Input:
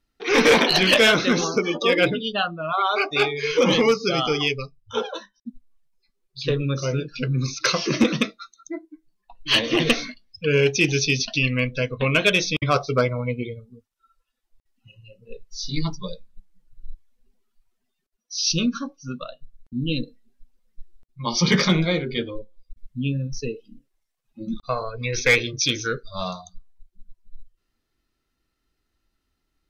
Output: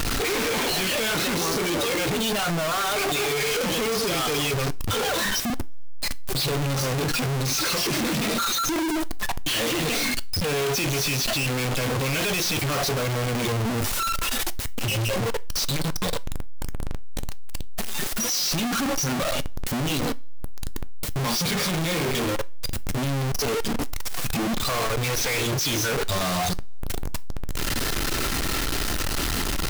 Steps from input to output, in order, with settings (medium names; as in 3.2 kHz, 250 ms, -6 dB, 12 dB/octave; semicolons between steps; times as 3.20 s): one-bit comparator; two-slope reverb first 0.26 s, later 1.6 s, from -28 dB, DRR 15.5 dB